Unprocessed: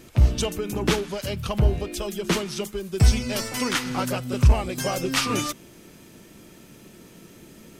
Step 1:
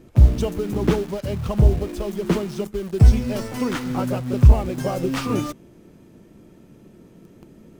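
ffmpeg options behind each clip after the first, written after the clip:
-filter_complex "[0:a]tiltshelf=f=1.3k:g=8,asplit=2[a][b];[b]acrusher=bits=4:mix=0:aa=0.000001,volume=-6dB[c];[a][c]amix=inputs=2:normalize=0,volume=-6.5dB"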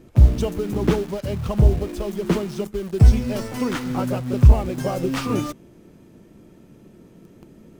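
-af anull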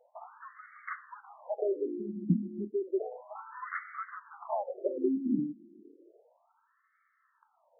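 -af "afftfilt=real='re*between(b*sr/1024,240*pow(1600/240,0.5+0.5*sin(2*PI*0.32*pts/sr))/1.41,240*pow(1600/240,0.5+0.5*sin(2*PI*0.32*pts/sr))*1.41)':imag='im*between(b*sr/1024,240*pow(1600/240,0.5+0.5*sin(2*PI*0.32*pts/sr))/1.41,240*pow(1600/240,0.5+0.5*sin(2*PI*0.32*pts/sr))*1.41)':win_size=1024:overlap=0.75,volume=-3.5dB"

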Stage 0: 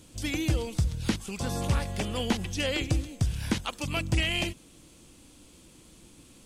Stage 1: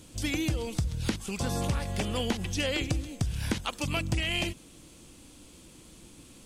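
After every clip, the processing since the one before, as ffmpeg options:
-af "acompressor=threshold=-27dB:ratio=6,volume=2dB"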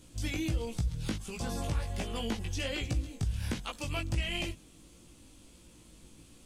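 -af "lowshelf=f=83:g=6,asoftclip=type=hard:threshold=-18dB,flanger=delay=17:depth=2.3:speed=1.4,volume=-2.5dB"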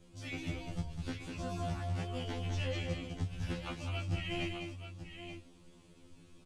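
-af "aemphasis=mode=reproduction:type=50fm,aecho=1:1:202|881:0.531|0.335,afftfilt=real='re*2*eq(mod(b,4),0)':imag='im*2*eq(mod(b,4),0)':win_size=2048:overlap=0.75,volume=-1.5dB"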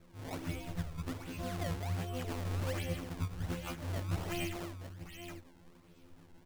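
-af "acrusher=samples=21:mix=1:aa=0.000001:lfo=1:lforange=33.6:lforate=1.3"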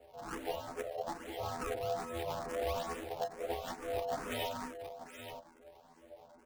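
-filter_complex "[0:a]aeval=exprs='val(0)*sin(2*PI*590*n/s)':c=same,asplit=2[a][b];[b]aeval=exprs='(mod(26.6*val(0)+1,2)-1)/26.6':c=same,volume=-9dB[c];[a][c]amix=inputs=2:normalize=0,asplit=2[d][e];[e]afreqshift=2.3[f];[d][f]amix=inputs=2:normalize=1,volume=2.5dB"

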